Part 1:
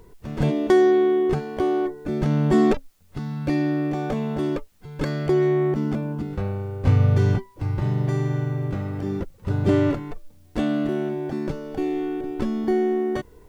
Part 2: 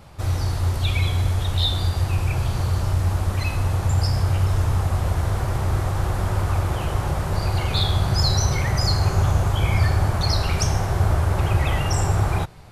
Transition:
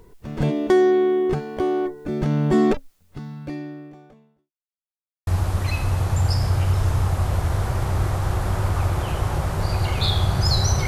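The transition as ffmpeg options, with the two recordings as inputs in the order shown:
-filter_complex "[0:a]apad=whole_dur=10.87,atrim=end=10.87,asplit=2[a][b];[a]atrim=end=4.52,asetpts=PTS-STARTPTS,afade=t=out:st=2.89:d=1.63:c=qua[c];[b]atrim=start=4.52:end=5.27,asetpts=PTS-STARTPTS,volume=0[d];[1:a]atrim=start=3:end=8.6,asetpts=PTS-STARTPTS,afade=t=in:d=0.004:c=hsin[e];[c][d][e]concat=n=3:v=0:a=1"

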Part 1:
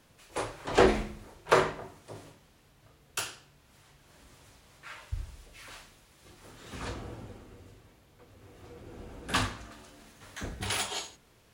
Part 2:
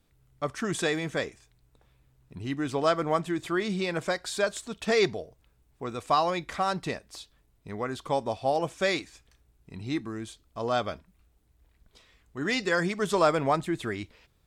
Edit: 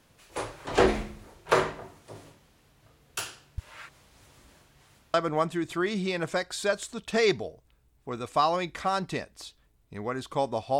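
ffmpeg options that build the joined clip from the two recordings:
-filter_complex "[0:a]apad=whole_dur=10.79,atrim=end=10.79,asplit=2[a][b];[a]atrim=end=3.582[c];[b]atrim=start=3.578:end=5.142,asetpts=PTS-STARTPTS,areverse[d];[1:a]atrim=start=2.878:end=8.53[e];[c][d]acrossfade=d=0.004:c1=hsin:c2=hsin[f];[f][e]acrossfade=d=0.004:c1=hsin:c2=hsin"

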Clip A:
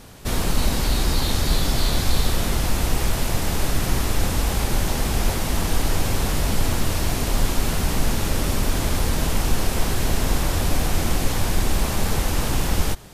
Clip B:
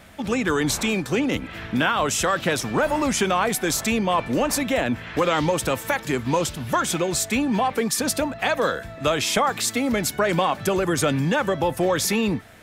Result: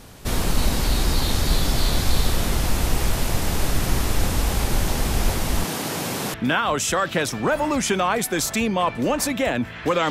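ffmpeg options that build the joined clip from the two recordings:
-filter_complex "[0:a]asettb=1/sr,asplit=3[a][b][c];[a]atrim=end=5.644[d];[b]atrim=start=5.64:end=6.34,asetpts=PTS-STARTPTS,afade=t=in:d=0.004:c=qsin,afade=t=out:st=0.696:d=0.004:c=qsin,highpass=f=140:w=0.5412,highpass=f=140:w=1.3066[e];[c]atrim=start=6.336[f];[d][e]acrossfade=d=0.004:c1=hsin:c2=qsin[g];[g][f]acrossfade=d=0.004:c1=qsin:c2=hsin,apad=whole_dur=10.1,atrim=end=10.1,atrim=end=6.342[h];[1:a]atrim=start=1.648:end=5.41[i];[h][i]acrossfade=d=0.004:c1=hsin:c2=hsin"

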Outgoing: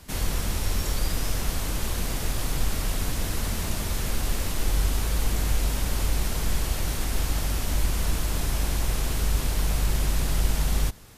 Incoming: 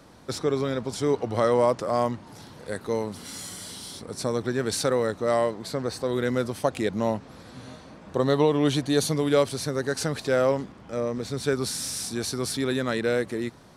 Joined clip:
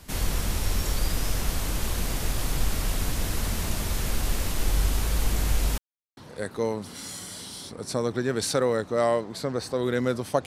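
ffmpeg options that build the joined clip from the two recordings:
-filter_complex "[0:a]apad=whole_dur=10.46,atrim=end=10.46,asplit=2[a][b];[a]atrim=end=5.78,asetpts=PTS-STARTPTS,afade=t=out:st=5.776:d=0.004:c=hsin[c];[b]atrim=start=5.78:end=6.17,asetpts=PTS-STARTPTS,volume=0[d];[1:a]atrim=start=2.47:end=6.76,asetpts=PTS-STARTPTS,afade=t=in:d=0.004:c=hsin[e];[c][d][e]concat=n=3:v=0:a=1"

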